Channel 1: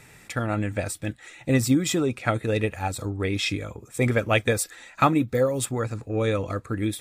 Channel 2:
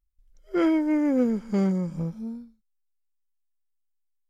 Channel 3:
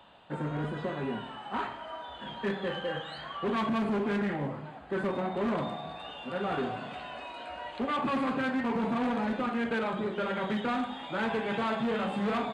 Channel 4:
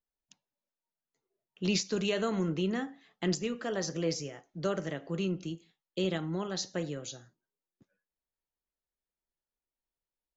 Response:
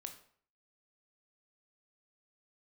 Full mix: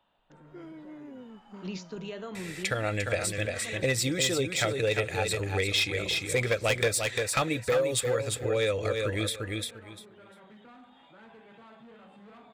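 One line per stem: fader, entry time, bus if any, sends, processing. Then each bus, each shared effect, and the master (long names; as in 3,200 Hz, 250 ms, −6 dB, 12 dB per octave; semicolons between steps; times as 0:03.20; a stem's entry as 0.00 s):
+2.5 dB, 2.35 s, no send, echo send −6.5 dB, graphic EQ with 10 bands 250 Hz −11 dB, 500 Hz +9 dB, 1,000 Hz −6 dB, 2,000 Hz +7 dB, 4,000 Hz +9 dB, 8,000 Hz +4 dB; hard clipping −13 dBFS, distortion −14 dB
−19.5 dB, 0.00 s, no send, no echo send, downward compressor, threshold −23 dBFS, peak gain reduction 6 dB
−16.0 dB, 0.00 s, no send, no echo send, brickwall limiter −31.5 dBFS, peak gain reduction 6.5 dB
−8.0 dB, 0.00 s, no send, no echo send, high-shelf EQ 4,800 Hz −10.5 dB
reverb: not used
echo: repeating echo 348 ms, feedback 16%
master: downward compressor 2 to 1, threshold −31 dBFS, peak gain reduction 11 dB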